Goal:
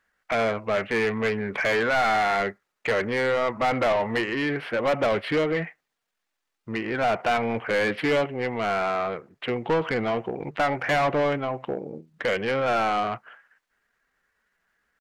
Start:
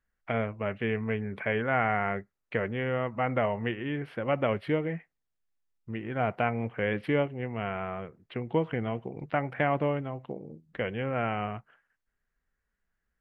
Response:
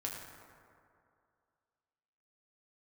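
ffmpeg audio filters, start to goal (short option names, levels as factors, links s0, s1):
-filter_complex "[0:a]atempo=0.88,asplit=2[s0][s1];[s1]highpass=f=720:p=1,volume=15.8,asoftclip=type=tanh:threshold=0.251[s2];[s0][s2]amix=inputs=2:normalize=0,lowpass=f=3700:p=1,volume=0.501,volume=0.794"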